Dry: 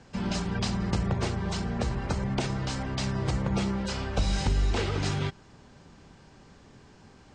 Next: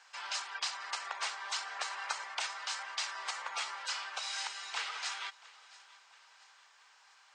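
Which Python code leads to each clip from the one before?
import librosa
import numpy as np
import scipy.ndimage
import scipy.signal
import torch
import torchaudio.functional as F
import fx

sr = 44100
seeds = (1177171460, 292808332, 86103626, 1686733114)

y = scipy.signal.sosfilt(scipy.signal.butter(4, 970.0, 'highpass', fs=sr, output='sos'), x)
y = fx.rider(y, sr, range_db=10, speed_s=0.5)
y = fx.echo_feedback(y, sr, ms=682, feedback_pct=49, wet_db=-20.5)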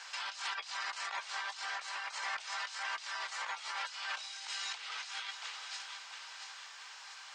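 y = fx.peak_eq(x, sr, hz=4200.0, db=6.0, octaves=2.5)
y = fx.over_compress(y, sr, threshold_db=-44.0, ratio=-1.0)
y = fx.doubler(y, sr, ms=14.0, db=-12.5)
y = F.gain(torch.from_numpy(y), 1.5).numpy()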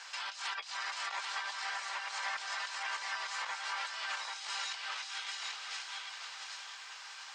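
y = x + 10.0 ** (-4.0 / 20.0) * np.pad(x, (int(787 * sr / 1000.0), 0))[:len(x)]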